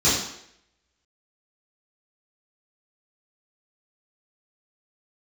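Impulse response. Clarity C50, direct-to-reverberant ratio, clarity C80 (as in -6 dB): 2.0 dB, -12.5 dB, 5.5 dB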